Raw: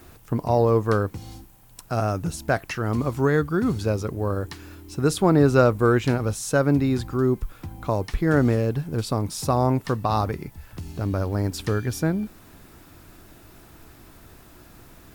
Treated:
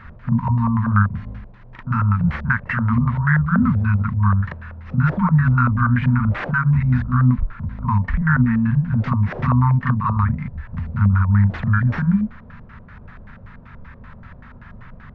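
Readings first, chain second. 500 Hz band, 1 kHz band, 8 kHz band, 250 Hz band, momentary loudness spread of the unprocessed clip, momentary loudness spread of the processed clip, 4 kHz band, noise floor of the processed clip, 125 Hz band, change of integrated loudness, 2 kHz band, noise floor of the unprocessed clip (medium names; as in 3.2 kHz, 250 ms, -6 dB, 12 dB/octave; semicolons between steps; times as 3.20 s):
-18.0 dB, +3.0 dB, under -30 dB, +4.0 dB, 12 LU, 9 LU, under -10 dB, -42 dBFS, +8.5 dB, +4.5 dB, +7.5 dB, -50 dBFS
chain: FFT band-reject 250–890 Hz; peak limiter -18.5 dBFS, peak gain reduction 8 dB; careless resampling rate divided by 4×, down none, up zero stuff; on a send: reverse echo 40 ms -5 dB; on the sum: LFO low-pass square 5.2 Hz 570–1800 Hz; tape spacing loss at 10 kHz 28 dB; trim +9 dB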